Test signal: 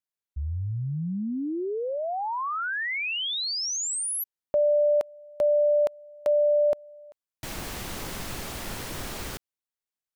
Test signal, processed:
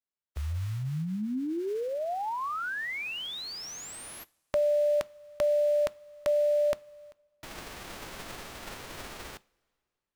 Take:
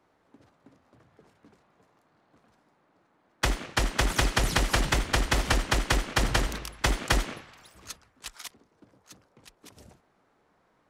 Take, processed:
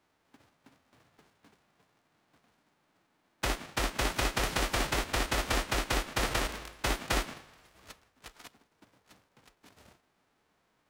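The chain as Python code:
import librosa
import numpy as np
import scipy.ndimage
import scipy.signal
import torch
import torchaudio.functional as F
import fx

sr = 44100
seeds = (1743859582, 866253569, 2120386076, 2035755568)

y = fx.envelope_flatten(x, sr, power=0.3)
y = fx.lowpass(y, sr, hz=2000.0, slope=6)
y = fx.rev_double_slope(y, sr, seeds[0], early_s=0.32, late_s=2.3, knee_db=-20, drr_db=18.5)
y = F.gain(torch.from_numpy(y), -2.0).numpy()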